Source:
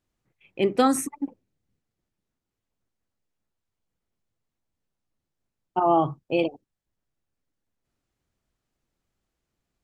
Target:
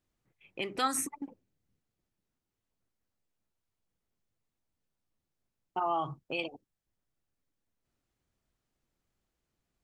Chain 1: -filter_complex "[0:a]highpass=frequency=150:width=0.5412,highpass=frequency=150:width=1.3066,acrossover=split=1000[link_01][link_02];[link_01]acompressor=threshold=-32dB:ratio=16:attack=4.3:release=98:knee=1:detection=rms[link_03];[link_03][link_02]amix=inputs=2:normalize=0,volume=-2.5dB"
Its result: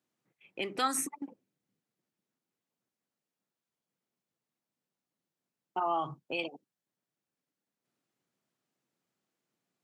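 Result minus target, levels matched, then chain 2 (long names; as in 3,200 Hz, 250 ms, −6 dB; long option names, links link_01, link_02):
125 Hz band −2.5 dB
-filter_complex "[0:a]acrossover=split=1000[link_01][link_02];[link_01]acompressor=threshold=-32dB:ratio=16:attack=4.3:release=98:knee=1:detection=rms[link_03];[link_03][link_02]amix=inputs=2:normalize=0,volume=-2.5dB"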